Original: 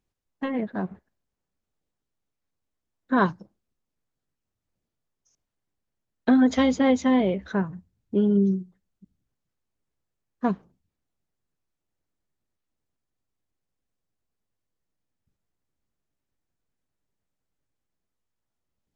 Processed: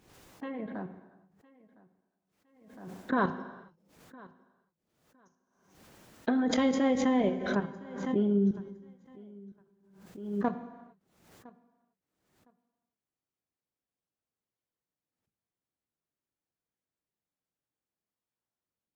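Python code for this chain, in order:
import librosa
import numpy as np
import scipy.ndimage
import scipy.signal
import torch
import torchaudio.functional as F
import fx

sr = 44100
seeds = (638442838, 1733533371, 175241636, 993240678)

y = fx.highpass(x, sr, hz=180.0, slope=6)
y = fx.high_shelf(y, sr, hz=2800.0, db=-5.0)
y = fx.level_steps(y, sr, step_db=12)
y = fx.echo_feedback(y, sr, ms=1010, feedback_pct=19, wet_db=-23)
y = fx.rev_gated(y, sr, seeds[0], gate_ms=470, shape='falling', drr_db=9.5)
y = fx.pre_swell(y, sr, db_per_s=66.0)
y = F.gain(torch.from_numpy(y), -1.5).numpy()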